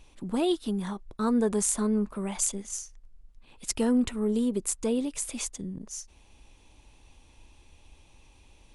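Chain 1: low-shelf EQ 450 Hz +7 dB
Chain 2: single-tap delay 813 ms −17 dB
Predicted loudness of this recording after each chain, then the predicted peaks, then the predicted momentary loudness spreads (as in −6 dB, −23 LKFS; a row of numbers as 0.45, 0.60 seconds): −24.5, −29.0 LKFS; −9.0, −9.0 dBFS; 14, 14 LU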